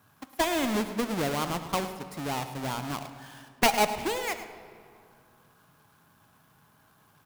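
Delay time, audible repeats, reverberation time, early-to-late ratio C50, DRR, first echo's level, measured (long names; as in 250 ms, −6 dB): 107 ms, 1, 2.4 s, 9.0 dB, 9.0 dB, −13.0 dB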